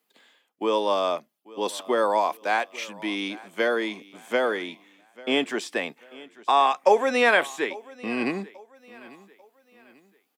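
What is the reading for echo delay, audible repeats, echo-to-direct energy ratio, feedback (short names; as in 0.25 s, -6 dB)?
0.842 s, 2, -20.5 dB, 38%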